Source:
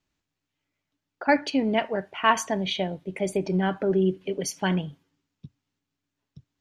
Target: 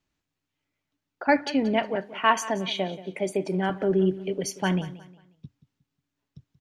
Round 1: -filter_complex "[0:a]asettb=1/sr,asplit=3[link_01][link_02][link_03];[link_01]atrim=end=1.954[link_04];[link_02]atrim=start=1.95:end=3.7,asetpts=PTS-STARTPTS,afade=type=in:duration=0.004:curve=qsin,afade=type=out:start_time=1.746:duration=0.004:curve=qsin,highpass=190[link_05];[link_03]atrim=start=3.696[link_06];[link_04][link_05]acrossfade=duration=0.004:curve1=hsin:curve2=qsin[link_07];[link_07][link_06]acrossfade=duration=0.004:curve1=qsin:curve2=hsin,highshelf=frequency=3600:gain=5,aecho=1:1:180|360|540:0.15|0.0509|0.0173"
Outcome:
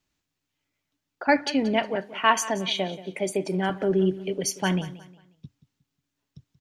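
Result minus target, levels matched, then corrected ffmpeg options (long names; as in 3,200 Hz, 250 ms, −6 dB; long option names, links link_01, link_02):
8,000 Hz band +5.0 dB
-filter_complex "[0:a]asettb=1/sr,asplit=3[link_01][link_02][link_03];[link_01]atrim=end=1.954[link_04];[link_02]atrim=start=1.95:end=3.7,asetpts=PTS-STARTPTS,afade=type=in:duration=0.004:curve=qsin,afade=type=out:start_time=1.746:duration=0.004:curve=qsin,highpass=190[link_05];[link_03]atrim=start=3.696[link_06];[link_04][link_05]acrossfade=duration=0.004:curve1=hsin:curve2=qsin[link_07];[link_07][link_06]acrossfade=duration=0.004:curve1=qsin:curve2=hsin,highshelf=frequency=3600:gain=-2,aecho=1:1:180|360|540:0.15|0.0509|0.0173"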